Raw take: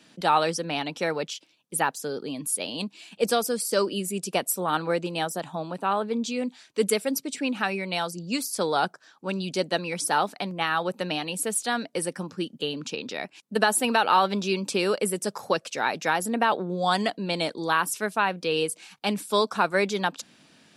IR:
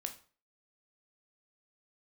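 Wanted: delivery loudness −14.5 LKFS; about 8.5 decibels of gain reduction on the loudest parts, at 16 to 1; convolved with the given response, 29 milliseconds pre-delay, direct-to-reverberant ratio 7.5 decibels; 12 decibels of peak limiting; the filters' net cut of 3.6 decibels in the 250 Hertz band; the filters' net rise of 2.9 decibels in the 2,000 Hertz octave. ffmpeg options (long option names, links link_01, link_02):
-filter_complex "[0:a]equalizer=frequency=250:width_type=o:gain=-5,equalizer=frequency=2000:width_type=o:gain=4,acompressor=threshold=-23dB:ratio=16,alimiter=limit=-21.5dB:level=0:latency=1,asplit=2[link_01][link_02];[1:a]atrim=start_sample=2205,adelay=29[link_03];[link_02][link_03]afir=irnorm=-1:irlink=0,volume=-6dB[link_04];[link_01][link_04]amix=inputs=2:normalize=0,volume=18dB"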